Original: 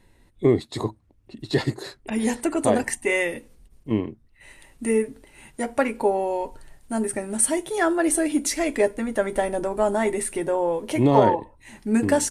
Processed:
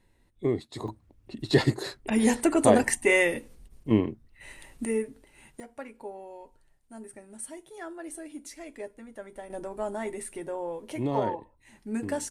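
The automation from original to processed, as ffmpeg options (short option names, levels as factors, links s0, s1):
-af "asetnsamples=n=441:p=0,asendcmd='0.88 volume volume 1dB;4.85 volume volume -7dB;5.6 volume volume -19dB;9.5 volume volume -11dB',volume=0.376"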